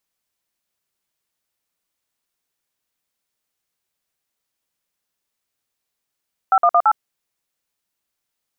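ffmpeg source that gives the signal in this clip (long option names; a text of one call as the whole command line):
ffmpeg -f lavfi -i "aevalsrc='0.224*clip(min(mod(t,0.112),0.06-mod(t,0.112))/0.002,0,1)*(eq(floor(t/0.112),0)*(sin(2*PI*770*mod(t,0.112))+sin(2*PI*1336*mod(t,0.112)))+eq(floor(t/0.112),1)*(sin(2*PI*697*mod(t,0.112))+sin(2*PI*1209*mod(t,0.112)))+eq(floor(t/0.112),2)*(sin(2*PI*697*mod(t,0.112))+sin(2*PI*1209*mod(t,0.112)))+eq(floor(t/0.112),3)*(sin(2*PI*852*mod(t,0.112))+sin(2*PI*1336*mod(t,0.112))))':duration=0.448:sample_rate=44100" out.wav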